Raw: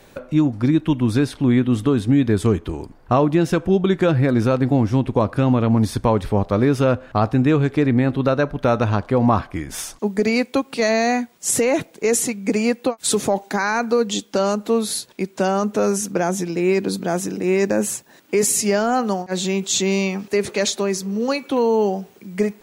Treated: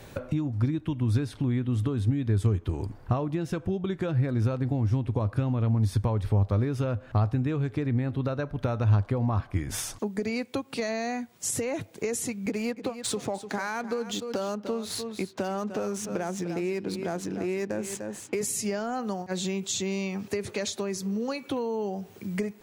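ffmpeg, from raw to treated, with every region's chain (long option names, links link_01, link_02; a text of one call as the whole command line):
ffmpeg -i in.wav -filter_complex "[0:a]asettb=1/sr,asplit=3[link_01][link_02][link_03];[link_01]atrim=end=12.464[link_04];[link_02]atrim=start=12.46:end=18.41,asetpts=PTS-STARTPTS,afade=type=in:duration=0.004:curve=qsin,afade=type=out:start_time=5.946:duration=0.004:curve=qsin,highpass=frequency=170:poles=1,adynamicsmooth=sensitivity=8:basefreq=2100,aecho=1:1:298:0.211,atrim=end_sample=262395[link_05];[link_03]atrim=start=18.406[link_06];[link_04][link_05]acrossfade=duration=0.004:curve1=hsin:curve2=qsin[link_07];[link_07][link_06]acrossfade=duration=0.004:curve1=qsin:curve2=hsin,acompressor=threshold=-30dB:ratio=4,equalizer=frequency=100:width=2.1:gain=14" out.wav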